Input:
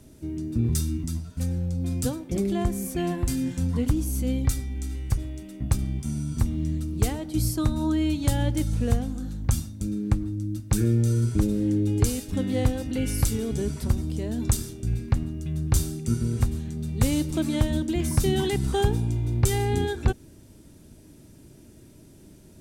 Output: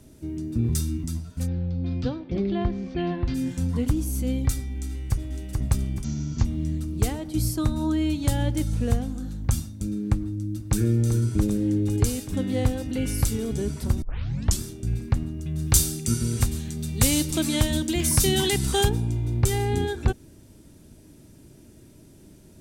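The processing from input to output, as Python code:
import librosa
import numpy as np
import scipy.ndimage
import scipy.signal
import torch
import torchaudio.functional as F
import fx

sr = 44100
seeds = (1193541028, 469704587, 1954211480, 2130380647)

y = fx.steep_lowpass(x, sr, hz=4500.0, slope=36, at=(1.46, 3.34), fade=0.02)
y = fx.echo_throw(y, sr, start_s=4.87, length_s=0.59, ms=430, feedback_pct=50, wet_db=-3.5)
y = fx.resample_bad(y, sr, factor=3, down='none', up='filtered', at=(6.04, 6.45))
y = fx.echo_throw(y, sr, start_s=10.21, length_s=0.58, ms=390, feedback_pct=80, wet_db=-10.0)
y = fx.high_shelf(y, sr, hz=2000.0, db=11.5, at=(15.58, 18.88), fade=0.02)
y = fx.edit(y, sr, fx.tape_start(start_s=14.02, length_s=0.58), tone=tone)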